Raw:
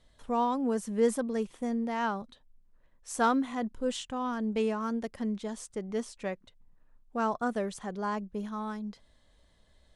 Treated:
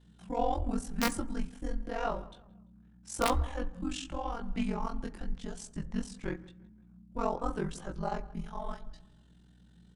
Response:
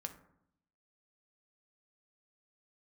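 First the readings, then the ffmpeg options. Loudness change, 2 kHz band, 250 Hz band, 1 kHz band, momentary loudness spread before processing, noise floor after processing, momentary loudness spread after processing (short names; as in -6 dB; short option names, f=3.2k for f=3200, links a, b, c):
-4.0 dB, -3.0 dB, -5.5 dB, -3.5 dB, 11 LU, -60 dBFS, 12 LU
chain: -filter_complex "[0:a]asplit=2[a][b];[b]adelay=172,lowpass=f=3.9k:p=1,volume=-21dB,asplit=2[c][d];[d]adelay=172,lowpass=f=3.9k:p=1,volume=0.36,asplit=2[e][f];[f]adelay=172,lowpass=f=3.9k:p=1,volume=0.36[g];[a][c][e][g]amix=inputs=4:normalize=0,aeval=exprs='(mod(6.68*val(0)+1,2)-1)/6.68':c=same,aeval=exprs='val(0)*sin(2*PI*22*n/s)':c=same,flanger=delay=17:depth=6.3:speed=0.89,afreqshift=-220,asplit=2[h][i];[1:a]atrim=start_sample=2205[j];[i][j]afir=irnorm=-1:irlink=0,volume=-1.5dB[k];[h][k]amix=inputs=2:normalize=0,aeval=exprs='val(0)+0.001*(sin(2*PI*60*n/s)+sin(2*PI*2*60*n/s)/2+sin(2*PI*3*60*n/s)/3+sin(2*PI*4*60*n/s)/4+sin(2*PI*5*60*n/s)/5)':c=same"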